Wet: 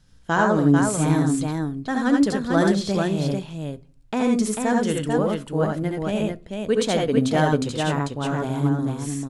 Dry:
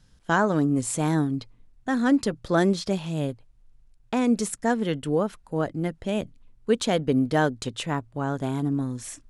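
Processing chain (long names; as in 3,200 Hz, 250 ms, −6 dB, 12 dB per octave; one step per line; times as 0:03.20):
de-essing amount 40%
multi-tap delay 70/84/443 ms −5.5/−4/−4 dB
on a send at −16.5 dB: convolution reverb RT60 0.40 s, pre-delay 6 ms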